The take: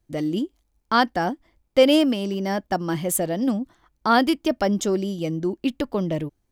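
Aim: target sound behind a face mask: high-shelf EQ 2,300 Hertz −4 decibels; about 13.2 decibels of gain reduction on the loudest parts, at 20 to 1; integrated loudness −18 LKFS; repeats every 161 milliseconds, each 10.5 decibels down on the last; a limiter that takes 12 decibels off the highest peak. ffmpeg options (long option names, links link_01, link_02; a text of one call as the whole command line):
ffmpeg -i in.wav -af "acompressor=threshold=-23dB:ratio=20,alimiter=level_in=1dB:limit=-24dB:level=0:latency=1,volume=-1dB,highshelf=frequency=2300:gain=-4,aecho=1:1:161|322|483:0.299|0.0896|0.0269,volume=16dB" out.wav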